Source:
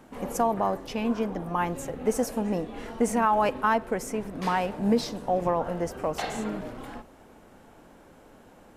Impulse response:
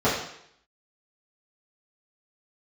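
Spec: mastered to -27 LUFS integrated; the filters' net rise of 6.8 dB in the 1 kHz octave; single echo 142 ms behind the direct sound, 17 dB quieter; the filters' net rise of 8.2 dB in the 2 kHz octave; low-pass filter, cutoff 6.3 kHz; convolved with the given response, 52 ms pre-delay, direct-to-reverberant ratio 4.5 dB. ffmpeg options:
-filter_complex "[0:a]lowpass=6300,equalizer=f=1000:t=o:g=6.5,equalizer=f=2000:t=o:g=8.5,aecho=1:1:142:0.141,asplit=2[s0][s1];[1:a]atrim=start_sample=2205,adelay=52[s2];[s1][s2]afir=irnorm=-1:irlink=0,volume=0.0794[s3];[s0][s3]amix=inputs=2:normalize=0,volume=0.531"

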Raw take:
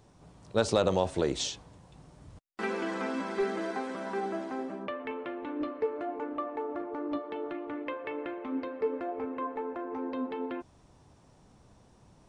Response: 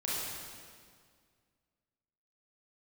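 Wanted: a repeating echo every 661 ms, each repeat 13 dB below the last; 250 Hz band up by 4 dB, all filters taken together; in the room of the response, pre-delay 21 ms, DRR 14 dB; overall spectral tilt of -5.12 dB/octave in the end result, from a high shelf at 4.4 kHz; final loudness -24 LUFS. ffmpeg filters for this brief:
-filter_complex "[0:a]equalizer=f=250:t=o:g=5,highshelf=f=4400:g=-5.5,aecho=1:1:661|1322|1983:0.224|0.0493|0.0108,asplit=2[s0][s1];[1:a]atrim=start_sample=2205,adelay=21[s2];[s1][s2]afir=irnorm=-1:irlink=0,volume=0.106[s3];[s0][s3]amix=inputs=2:normalize=0,volume=2.51"

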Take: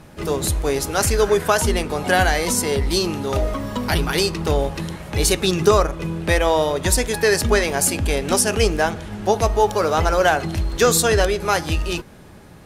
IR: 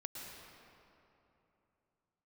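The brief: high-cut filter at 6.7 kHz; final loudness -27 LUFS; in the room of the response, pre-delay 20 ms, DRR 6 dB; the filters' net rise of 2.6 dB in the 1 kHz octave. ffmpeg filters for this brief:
-filter_complex "[0:a]lowpass=6700,equalizer=f=1000:t=o:g=3.5,asplit=2[s0][s1];[1:a]atrim=start_sample=2205,adelay=20[s2];[s1][s2]afir=irnorm=-1:irlink=0,volume=0.631[s3];[s0][s3]amix=inputs=2:normalize=0,volume=0.355"

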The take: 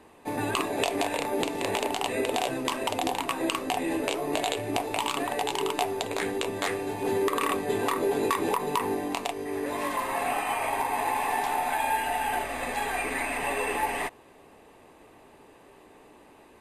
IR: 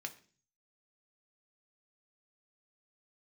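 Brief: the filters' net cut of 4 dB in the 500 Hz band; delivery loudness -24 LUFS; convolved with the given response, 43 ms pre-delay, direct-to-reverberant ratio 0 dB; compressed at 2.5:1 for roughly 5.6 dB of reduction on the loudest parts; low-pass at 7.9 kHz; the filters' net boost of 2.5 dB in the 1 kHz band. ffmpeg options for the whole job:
-filter_complex "[0:a]lowpass=7900,equalizer=f=500:t=o:g=-7,equalizer=f=1000:t=o:g=5.5,acompressor=threshold=0.0398:ratio=2.5,asplit=2[s0][s1];[1:a]atrim=start_sample=2205,adelay=43[s2];[s1][s2]afir=irnorm=-1:irlink=0,volume=1.12[s3];[s0][s3]amix=inputs=2:normalize=0,volume=1.78"

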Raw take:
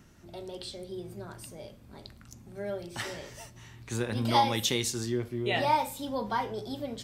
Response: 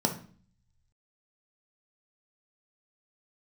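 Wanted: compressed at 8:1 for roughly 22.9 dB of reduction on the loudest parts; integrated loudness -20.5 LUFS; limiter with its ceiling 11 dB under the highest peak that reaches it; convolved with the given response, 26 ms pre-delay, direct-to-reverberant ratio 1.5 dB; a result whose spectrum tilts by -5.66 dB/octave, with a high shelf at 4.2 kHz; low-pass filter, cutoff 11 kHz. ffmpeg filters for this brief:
-filter_complex "[0:a]lowpass=11000,highshelf=f=4200:g=-3,acompressor=threshold=0.00631:ratio=8,alimiter=level_in=7.5:limit=0.0631:level=0:latency=1,volume=0.133,asplit=2[s0][s1];[1:a]atrim=start_sample=2205,adelay=26[s2];[s1][s2]afir=irnorm=-1:irlink=0,volume=0.299[s3];[s0][s3]amix=inputs=2:normalize=0,volume=17.8"

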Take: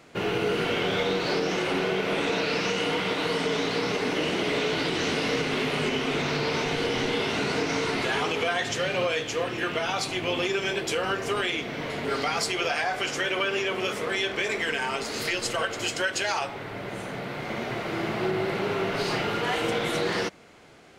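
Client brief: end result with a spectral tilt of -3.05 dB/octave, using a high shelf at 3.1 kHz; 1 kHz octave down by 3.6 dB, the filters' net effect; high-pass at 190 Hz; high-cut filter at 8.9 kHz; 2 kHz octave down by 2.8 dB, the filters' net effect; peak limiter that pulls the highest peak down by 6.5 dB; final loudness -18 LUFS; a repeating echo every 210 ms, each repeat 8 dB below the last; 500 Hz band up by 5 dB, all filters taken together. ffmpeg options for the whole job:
-af "highpass=190,lowpass=8900,equalizer=f=500:t=o:g=8,equalizer=f=1000:t=o:g=-8.5,equalizer=f=2000:t=o:g=-3.5,highshelf=f=3100:g=5,alimiter=limit=0.126:level=0:latency=1,aecho=1:1:210|420|630|840|1050:0.398|0.159|0.0637|0.0255|0.0102,volume=2.66"

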